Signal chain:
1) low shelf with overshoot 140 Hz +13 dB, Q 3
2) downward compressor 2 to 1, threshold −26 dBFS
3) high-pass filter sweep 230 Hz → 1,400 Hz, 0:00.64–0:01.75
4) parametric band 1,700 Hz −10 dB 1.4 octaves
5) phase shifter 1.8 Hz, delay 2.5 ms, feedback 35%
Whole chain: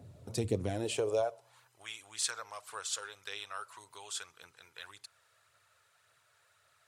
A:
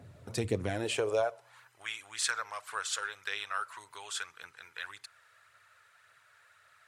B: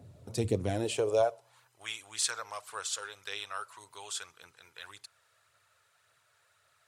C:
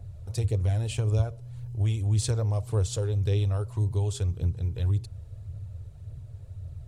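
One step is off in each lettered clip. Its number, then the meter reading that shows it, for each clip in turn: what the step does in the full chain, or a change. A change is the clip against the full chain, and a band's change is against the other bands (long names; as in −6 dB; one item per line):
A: 4, 2 kHz band +7.5 dB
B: 2, change in momentary loudness spread +1 LU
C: 3, 125 Hz band +21.5 dB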